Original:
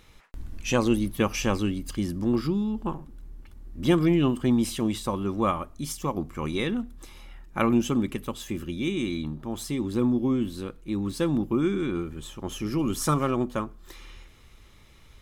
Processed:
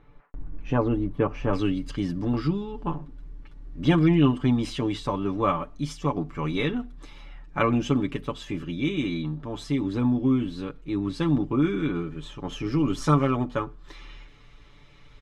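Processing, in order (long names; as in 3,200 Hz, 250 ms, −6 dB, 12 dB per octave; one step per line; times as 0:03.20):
low-pass filter 1,200 Hz 12 dB per octave, from 0:01.53 4,200 Hz
comb filter 6.9 ms, depth 79%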